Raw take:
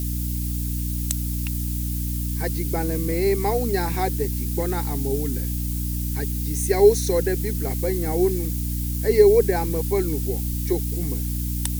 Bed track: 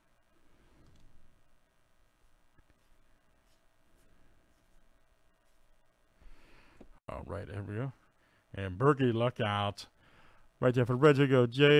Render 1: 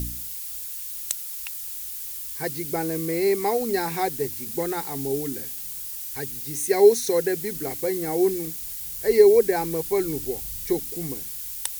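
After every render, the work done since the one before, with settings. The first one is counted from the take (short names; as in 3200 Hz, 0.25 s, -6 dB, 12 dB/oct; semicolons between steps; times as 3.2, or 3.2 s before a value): de-hum 60 Hz, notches 5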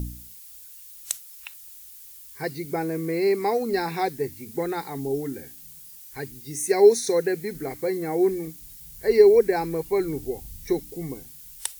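noise print and reduce 11 dB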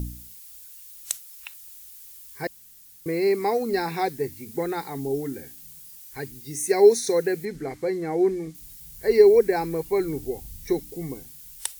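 2.47–3.06 room tone; 7.45–8.55 air absorption 52 m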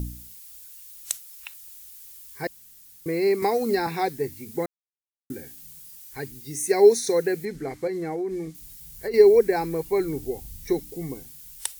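3.42–3.87 three-band squash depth 100%; 4.66–5.3 mute; 7.87–9.14 compressor 10:1, threshold -25 dBFS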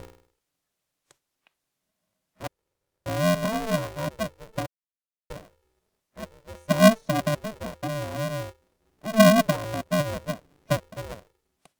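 band-pass 360 Hz, Q 2; polarity switched at an audio rate 220 Hz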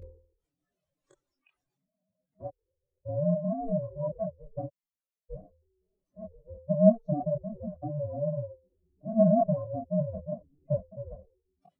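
spectral contrast raised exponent 3.7; chorus voices 6, 1 Hz, delay 24 ms, depth 3 ms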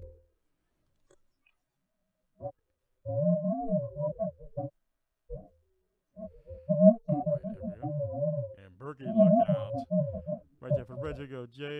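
add bed track -16 dB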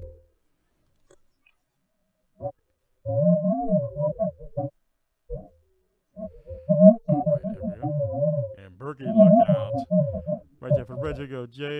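gain +7 dB; limiter -2 dBFS, peak gain reduction 1.5 dB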